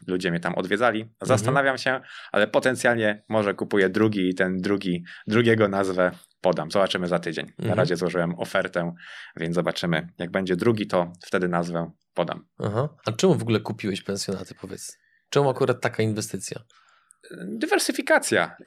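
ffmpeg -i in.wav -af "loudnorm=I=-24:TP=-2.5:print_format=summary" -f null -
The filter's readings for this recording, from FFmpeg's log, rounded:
Input Integrated:    -24.3 LUFS
Input True Peak:      -4.8 dBTP
Input LRA:             3.5 LU
Input Threshold:     -34.8 LUFS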